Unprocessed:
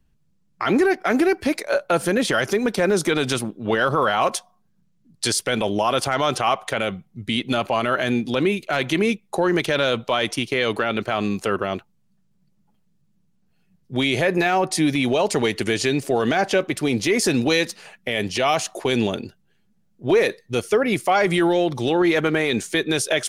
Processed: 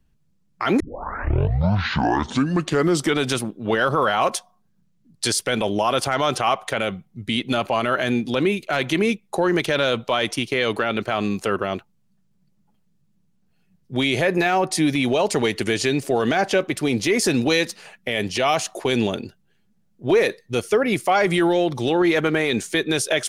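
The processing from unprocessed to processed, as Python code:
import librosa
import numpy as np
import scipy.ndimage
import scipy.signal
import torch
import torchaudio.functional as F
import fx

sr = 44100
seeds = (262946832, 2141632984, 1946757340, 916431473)

y = fx.edit(x, sr, fx.tape_start(start_s=0.8, length_s=2.45), tone=tone)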